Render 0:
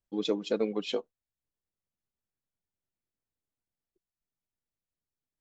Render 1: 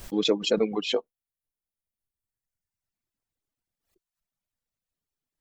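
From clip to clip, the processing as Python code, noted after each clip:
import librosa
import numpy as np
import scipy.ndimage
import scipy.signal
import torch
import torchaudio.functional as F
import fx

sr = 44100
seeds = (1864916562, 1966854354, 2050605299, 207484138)

y = fx.dereverb_blind(x, sr, rt60_s=1.7)
y = fx.pre_swell(y, sr, db_per_s=130.0)
y = y * 10.0 ** (6.0 / 20.0)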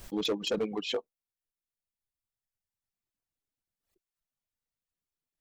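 y = np.clip(10.0 ** (19.5 / 20.0) * x, -1.0, 1.0) / 10.0 ** (19.5 / 20.0)
y = y * 10.0 ** (-5.0 / 20.0)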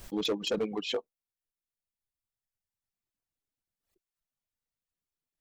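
y = x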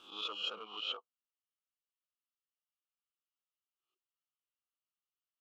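y = fx.spec_swells(x, sr, rise_s=0.48)
y = fx.double_bandpass(y, sr, hz=1900.0, octaves=1.2)
y = y * 10.0 ** (1.0 / 20.0)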